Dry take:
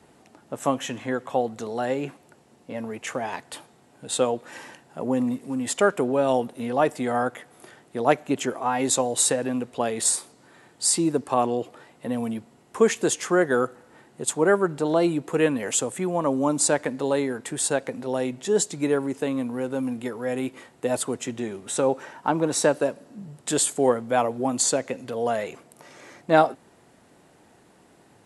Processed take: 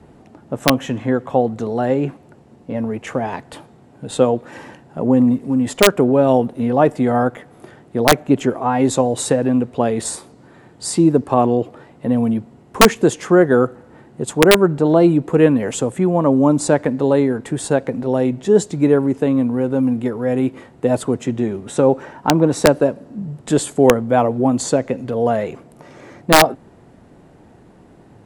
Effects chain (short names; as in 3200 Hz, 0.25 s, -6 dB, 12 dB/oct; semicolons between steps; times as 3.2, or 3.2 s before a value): tilt -3 dB/oct; wrapped overs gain 6 dB; gain +5 dB